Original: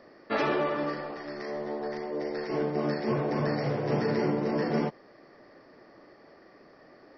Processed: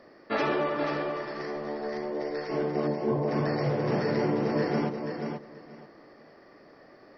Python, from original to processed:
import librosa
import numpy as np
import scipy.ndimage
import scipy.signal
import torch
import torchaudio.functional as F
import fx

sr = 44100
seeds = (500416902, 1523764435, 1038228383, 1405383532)

y = fx.brickwall_lowpass(x, sr, high_hz=1100.0, at=(2.87, 3.28))
y = fx.echo_feedback(y, sr, ms=483, feedback_pct=19, wet_db=-6.0)